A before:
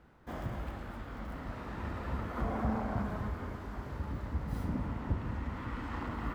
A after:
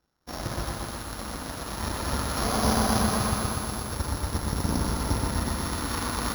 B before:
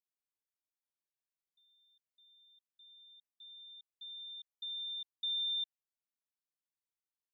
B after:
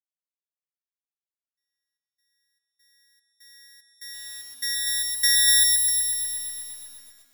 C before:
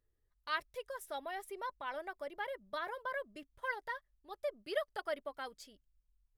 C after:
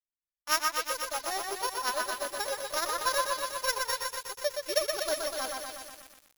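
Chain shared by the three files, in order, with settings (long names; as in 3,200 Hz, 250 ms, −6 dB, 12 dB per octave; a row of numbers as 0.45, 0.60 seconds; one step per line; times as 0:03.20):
samples sorted by size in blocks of 8 samples
low-shelf EQ 430 Hz −4 dB
harmonic and percussive parts rebalanced harmonic +7 dB
in parallel at +2 dB: brickwall limiter −29 dBFS
on the sum: power curve on the samples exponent 2
on a send: echo through a band-pass that steps 130 ms, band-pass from 1,300 Hz, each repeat 1.4 octaves, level −3.5 dB
on the sum: feedback echo at a low word length 122 ms, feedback 80%, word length 9 bits, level −4.5 dB
normalise the peak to −9 dBFS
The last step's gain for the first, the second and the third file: +7.0, +6.0, +6.0 decibels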